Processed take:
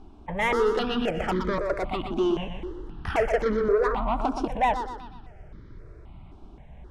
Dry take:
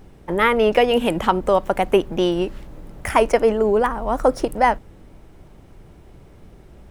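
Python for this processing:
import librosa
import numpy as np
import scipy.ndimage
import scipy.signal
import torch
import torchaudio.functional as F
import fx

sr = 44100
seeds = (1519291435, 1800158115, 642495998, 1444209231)

p1 = scipy.signal.sosfilt(scipy.signal.butter(2, 3800.0, 'lowpass', fs=sr, output='sos'), x)
p2 = fx.notch(p1, sr, hz=530.0, q=12.0)
p3 = 10.0 ** (-16.5 / 20.0) * np.tanh(p2 / 10.0 ** (-16.5 / 20.0))
p4 = p3 + fx.echo_feedback(p3, sr, ms=122, feedback_pct=48, wet_db=-7, dry=0)
y = fx.phaser_held(p4, sr, hz=3.8, low_hz=510.0, high_hz=2700.0)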